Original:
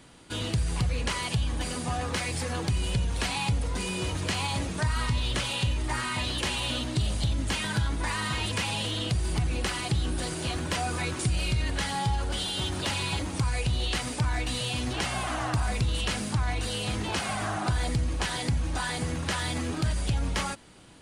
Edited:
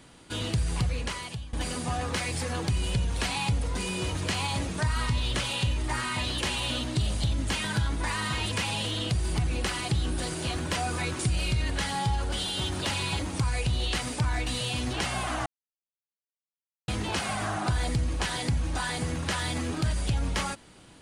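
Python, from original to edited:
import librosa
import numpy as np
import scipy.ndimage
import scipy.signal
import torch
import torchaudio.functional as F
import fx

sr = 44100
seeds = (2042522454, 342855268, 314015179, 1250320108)

y = fx.edit(x, sr, fx.fade_out_to(start_s=0.82, length_s=0.71, floor_db=-17.0),
    fx.silence(start_s=15.46, length_s=1.42), tone=tone)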